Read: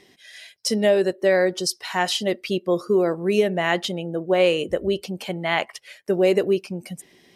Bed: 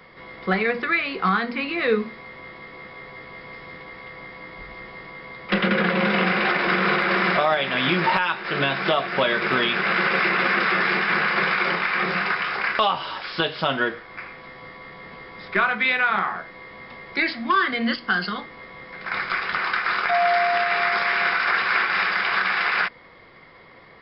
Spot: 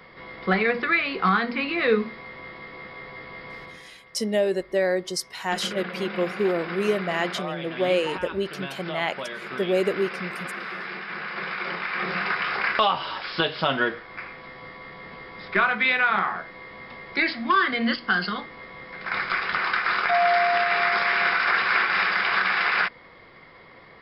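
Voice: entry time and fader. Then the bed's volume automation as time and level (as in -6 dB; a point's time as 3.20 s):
3.50 s, -4.5 dB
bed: 3.62 s 0 dB
3.96 s -13 dB
11.09 s -13 dB
12.51 s -0.5 dB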